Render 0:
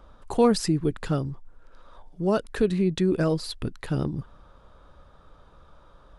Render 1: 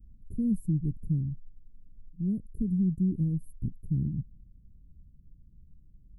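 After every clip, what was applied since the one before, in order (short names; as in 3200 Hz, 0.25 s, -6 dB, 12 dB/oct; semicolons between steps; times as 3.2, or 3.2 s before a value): inverse Chebyshev band-stop 1000–4100 Hz, stop band 80 dB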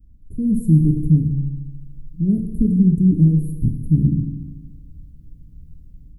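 AGC gain up to 10 dB; FDN reverb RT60 1.3 s, low-frequency decay 1.05×, high-frequency decay 0.85×, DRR 4.5 dB; gain +2.5 dB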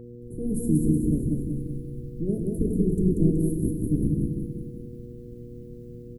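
spectral limiter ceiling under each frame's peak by 20 dB; on a send: feedback echo 0.187 s, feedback 54%, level -3 dB; on the sum: buzz 120 Hz, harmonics 4, -34 dBFS -1 dB/oct; gain -8.5 dB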